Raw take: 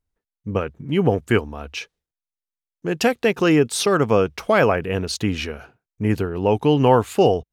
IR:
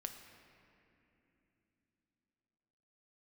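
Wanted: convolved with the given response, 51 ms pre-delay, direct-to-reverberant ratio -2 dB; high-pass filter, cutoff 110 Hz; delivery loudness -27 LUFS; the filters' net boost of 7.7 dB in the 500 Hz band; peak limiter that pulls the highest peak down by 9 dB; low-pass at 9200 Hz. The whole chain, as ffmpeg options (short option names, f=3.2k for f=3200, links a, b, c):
-filter_complex "[0:a]highpass=110,lowpass=9.2k,equalizer=f=500:t=o:g=9,alimiter=limit=-6.5dB:level=0:latency=1,asplit=2[a][b];[1:a]atrim=start_sample=2205,adelay=51[c];[b][c]afir=irnorm=-1:irlink=0,volume=4.5dB[d];[a][d]amix=inputs=2:normalize=0,volume=-12.5dB"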